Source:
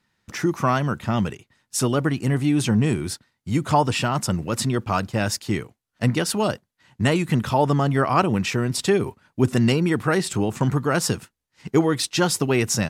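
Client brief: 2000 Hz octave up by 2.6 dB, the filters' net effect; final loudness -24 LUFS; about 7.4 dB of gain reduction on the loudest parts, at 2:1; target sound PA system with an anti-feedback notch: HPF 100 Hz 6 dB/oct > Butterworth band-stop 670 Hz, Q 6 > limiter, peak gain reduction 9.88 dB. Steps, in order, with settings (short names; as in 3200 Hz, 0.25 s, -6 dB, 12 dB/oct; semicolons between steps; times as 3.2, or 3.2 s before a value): bell 2000 Hz +3.5 dB; compressor 2:1, threshold -27 dBFS; HPF 100 Hz 6 dB/oct; Butterworth band-stop 670 Hz, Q 6; gain +8 dB; limiter -14 dBFS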